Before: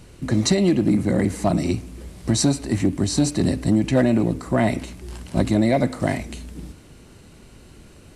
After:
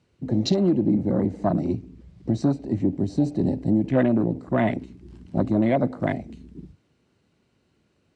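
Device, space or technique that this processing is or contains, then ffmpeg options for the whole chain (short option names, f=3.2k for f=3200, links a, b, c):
over-cleaned archive recording: -filter_complex "[0:a]asettb=1/sr,asplit=3[a][b][c];[a]atrim=end=0.814[d];[b]atrim=start=0.81:end=2.99,asetpts=PTS-STARTPTS,afade=t=in:d=0.004:c=qsin,afade=t=out:st=2.176:d=0.004:c=qsin,lowpass=8.6k[e];[c]atrim=start=2.986[f];[d][e]acrossfade=d=0.004:c1=hsin:c2=qsin[g];[g][f]acrossfade=d=0.004:c1=qsin:c2=hsin,highpass=100,lowpass=5.5k,afwtdn=0.0355,volume=-2dB"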